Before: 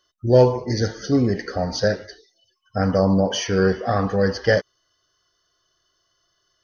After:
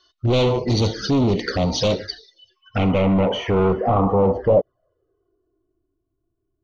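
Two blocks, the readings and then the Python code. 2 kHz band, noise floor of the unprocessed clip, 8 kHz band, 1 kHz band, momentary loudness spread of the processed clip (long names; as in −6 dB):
−4.0 dB, −70 dBFS, can't be measured, +3.0 dB, 7 LU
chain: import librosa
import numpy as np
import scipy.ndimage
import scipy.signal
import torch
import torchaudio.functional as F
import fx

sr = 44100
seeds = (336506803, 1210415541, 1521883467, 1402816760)

y = np.clip(10.0 ** (22.5 / 20.0) * x, -1.0, 1.0) / 10.0 ** (22.5 / 20.0)
y = fx.env_flanger(y, sr, rest_ms=2.8, full_db=-24.5)
y = fx.filter_sweep_lowpass(y, sr, from_hz=4200.0, to_hz=240.0, start_s=2.18, end_s=5.99, q=2.5)
y = y * 10.0 ** (7.5 / 20.0)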